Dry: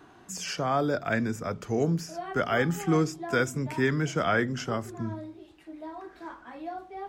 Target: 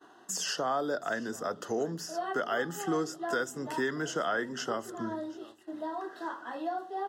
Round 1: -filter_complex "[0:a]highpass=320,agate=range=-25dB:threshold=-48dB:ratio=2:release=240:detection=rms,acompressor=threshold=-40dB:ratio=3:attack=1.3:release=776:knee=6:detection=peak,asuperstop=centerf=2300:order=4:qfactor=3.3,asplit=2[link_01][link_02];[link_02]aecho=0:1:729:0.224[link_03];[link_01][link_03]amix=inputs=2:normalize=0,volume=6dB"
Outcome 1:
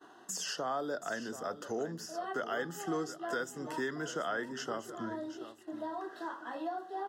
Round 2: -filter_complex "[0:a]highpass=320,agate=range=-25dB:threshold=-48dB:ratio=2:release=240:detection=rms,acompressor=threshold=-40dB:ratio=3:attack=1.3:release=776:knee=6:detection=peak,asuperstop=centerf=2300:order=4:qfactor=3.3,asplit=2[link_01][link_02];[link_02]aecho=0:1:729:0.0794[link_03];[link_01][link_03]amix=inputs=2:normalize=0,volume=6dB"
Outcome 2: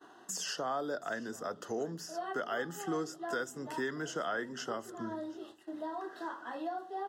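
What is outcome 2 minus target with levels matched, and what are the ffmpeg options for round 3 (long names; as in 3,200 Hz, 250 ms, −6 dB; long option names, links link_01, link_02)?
downward compressor: peak gain reduction +4.5 dB
-filter_complex "[0:a]highpass=320,agate=range=-25dB:threshold=-48dB:ratio=2:release=240:detection=rms,acompressor=threshold=-33dB:ratio=3:attack=1.3:release=776:knee=6:detection=peak,asuperstop=centerf=2300:order=4:qfactor=3.3,asplit=2[link_01][link_02];[link_02]aecho=0:1:729:0.0794[link_03];[link_01][link_03]amix=inputs=2:normalize=0,volume=6dB"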